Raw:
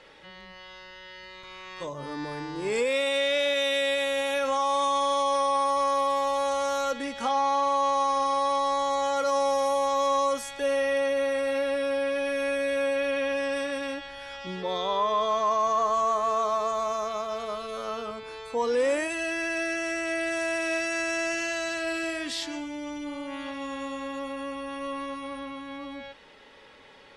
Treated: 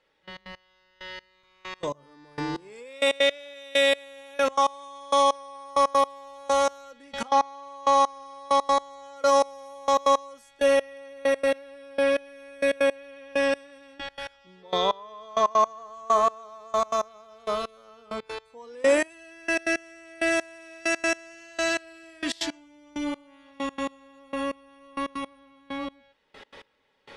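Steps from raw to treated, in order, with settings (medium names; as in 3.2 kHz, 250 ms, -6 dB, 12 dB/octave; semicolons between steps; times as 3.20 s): trance gate "...x.x.....xx.." 164 bpm -24 dB; trim +6 dB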